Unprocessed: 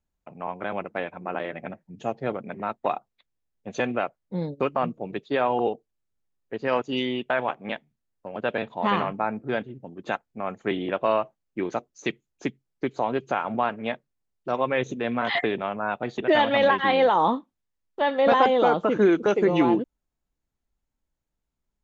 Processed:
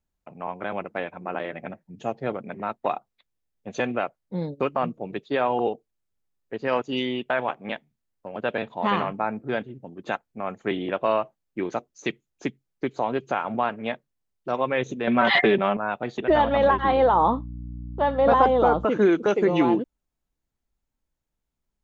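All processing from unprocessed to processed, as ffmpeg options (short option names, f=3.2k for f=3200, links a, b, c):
-filter_complex "[0:a]asettb=1/sr,asplit=3[a][b][c];[a]atrim=end=15.074[d];[b]atrim=start=15.07:end=15.77,asetpts=PTS-STARTPTS,afade=t=in:d=0.004:c=qsin,afade=t=out:st=0.696:d=0.004:c=qsin,lowpass=5.3k,acontrast=33,aecho=1:1:5.2:0.63,atrim=end_sample=30870[e];[c]atrim=start=15.766[f];[d][e]acrossfade=d=0.004:c1=hsin:c2=qsin[g];[g][f]acrossfade=d=0.004:c1=qsin:c2=hsin,asettb=1/sr,asplit=3[h][i][j];[h]atrim=end=16.294[k];[i]atrim=start=16.29:end=18.85,asetpts=PTS-STARTPTS,afade=t=in:d=0.004:c=qsin,afade=t=out:st=2.556:d=0.004:c=qsin,highshelf=f=1.6k:t=q:w=1.5:g=-6.5,aeval=exprs='val(0)+0.02*(sin(2*PI*60*n/s)+sin(2*PI*2*60*n/s)/2+sin(2*PI*3*60*n/s)/3+sin(2*PI*4*60*n/s)/4+sin(2*PI*5*60*n/s)/5)':c=same[l];[j]atrim=start=18.846[m];[k][l]acrossfade=d=0.004:c1=hsin:c2=qsin[n];[n][m]acrossfade=d=0.004:c1=qsin:c2=hsin"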